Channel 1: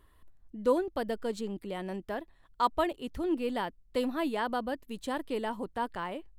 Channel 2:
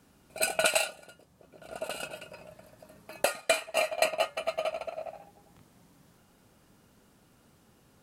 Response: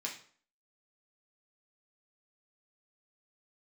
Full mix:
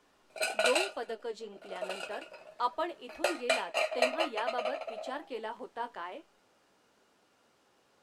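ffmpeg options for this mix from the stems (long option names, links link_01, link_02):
-filter_complex "[0:a]volume=-0.5dB,asplit=2[link_01][link_02];[link_02]volume=-19dB[link_03];[1:a]volume=2dB[link_04];[2:a]atrim=start_sample=2205[link_05];[link_03][link_05]afir=irnorm=-1:irlink=0[link_06];[link_01][link_04][link_06]amix=inputs=3:normalize=0,flanger=delay=9.3:depth=7.2:regen=-43:speed=1.1:shape=triangular,acrossover=split=320 7400:gain=0.112 1 0.2[link_07][link_08][link_09];[link_07][link_08][link_09]amix=inputs=3:normalize=0"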